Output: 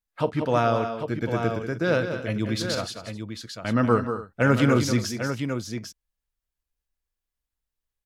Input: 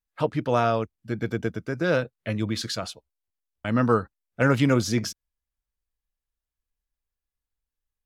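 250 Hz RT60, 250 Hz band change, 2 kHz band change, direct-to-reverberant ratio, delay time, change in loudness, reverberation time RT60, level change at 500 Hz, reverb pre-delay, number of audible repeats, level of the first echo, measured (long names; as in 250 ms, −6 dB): no reverb audible, +1.5 dB, +1.0 dB, no reverb audible, 43 ms, +0.5 dB, no reverb audible, +1.5 dB, no reverb audible, 4, −17.5 dB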